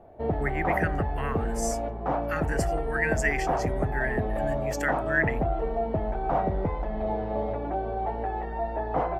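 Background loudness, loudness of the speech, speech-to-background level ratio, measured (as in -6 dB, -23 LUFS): -29.5 LUFS, -31.5 LUFS, -2.0 dB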